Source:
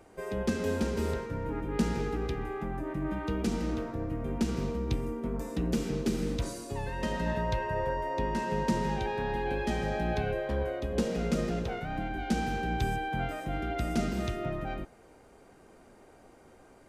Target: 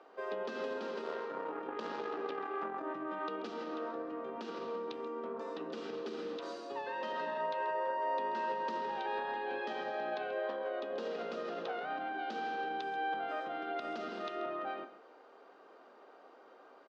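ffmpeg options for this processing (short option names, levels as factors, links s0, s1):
-filter_complex "[0:a]bandreject=f=60:t=h:w=6,bandreject=f=120:t=h:w=6,bandreject=f=180:t=h:w=6,bandreject=f=240:t=h:w=6,bandreject=f=300:t=h:w=6,bandreject=f=360:t=h:w=6,bandreject=f=420:t=h:w=6,alimiter=level_in=1.41:limit=0.0631:level=0:latency=1:release=68,volume=0.708,asettb=1/sr,asplit=3[s0][s1][s2];[s0]atrim=end=1.034[s3];[s1]atrim=start=1.03:end=2.83,asetpts=PTS-STARTPTS,afade=t=in:d=0.004:c=qsin,afade=t=out:st=1.796:d=0.004:c=qsin,aeval=exprs='0.0447*(cos(1*acos(clip(val(0)/0.0447,-1,1)))-cos(1*PI/2))+0.0141*(cos(2*acos(clip(val(0)/0.0447,-1,1)))-cos(2*PI/2))':c=same[s4];[s2]atrim=start=2.826[s5];[s3][s4]acrossfade=d=0.004:c1=hsin:c2=qsin[s6];[s6][s5]acrossfade=d=0.004:c1=qsin:c2=hsin,highpass=f=320:w=0.5412,highpass=f=320:w=1.3066,equalizer=f=340:t=q:w=4:g=-4,equalizer=f=1200:t=q:w=4:g=6,equalizer=f=2200:t=q:w=4:g=-7,lowpass=f=4300:w=0.5412,lowpass=f=4300:w=1.3066,asplit=2[s7][s8];[s8]adelay=134.1,volume=0.2,highshelf=f=4000:g=-3.02[s9];[s7][s9]amix=inputs=2:normalize=0"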